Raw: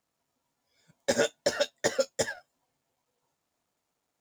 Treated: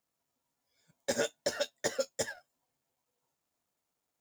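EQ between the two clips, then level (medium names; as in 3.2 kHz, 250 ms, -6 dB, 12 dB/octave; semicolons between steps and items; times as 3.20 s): treble shelf 9.1 kHz +7.5 dB; -6.0 dB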